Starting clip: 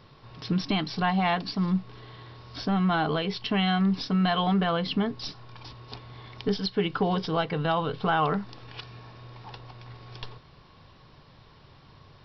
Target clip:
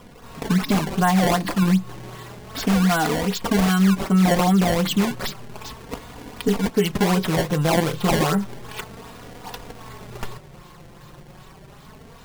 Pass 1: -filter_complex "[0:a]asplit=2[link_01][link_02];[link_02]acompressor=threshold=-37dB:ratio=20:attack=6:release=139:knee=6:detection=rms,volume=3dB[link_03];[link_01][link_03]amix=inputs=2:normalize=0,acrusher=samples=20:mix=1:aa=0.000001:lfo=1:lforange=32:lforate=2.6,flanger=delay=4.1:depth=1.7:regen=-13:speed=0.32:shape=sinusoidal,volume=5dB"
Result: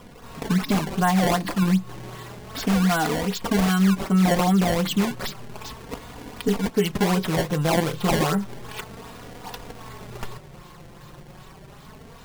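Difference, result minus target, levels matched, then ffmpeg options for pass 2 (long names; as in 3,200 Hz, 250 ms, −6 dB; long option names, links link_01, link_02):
downward compressor: peak gain reduction +7.5 dB
-filter_complex "[0:a]asplit=2[link_01][link_02];[link_02]acompressor=threshold=-29dB:ratio=20:attack=6:release=139:knee=6:detection=rms,volume=3dB[link_03];[link_01][link_03]amix=inputs=2:normalize=0,acrusher=samples=20:mix=1:aa=0.000001:lfo=1:lforange=32:lforate=2.6,flanger=delay=4.1:depth=1.7:regen=-13:speed=0.32:shape=sinusoidal,volume=5dB"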